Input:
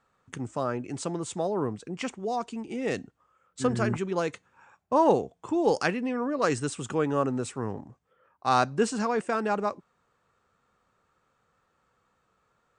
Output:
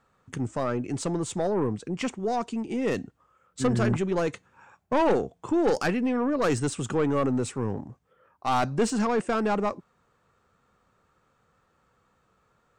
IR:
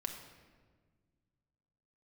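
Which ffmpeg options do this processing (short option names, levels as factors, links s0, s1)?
-af "aeval=exprs='(tanh(12.6*val(0)+0.15)-tanh(0.15))/12.6':c=same,lowshelf=f=380:g=4.5,volume=1.33"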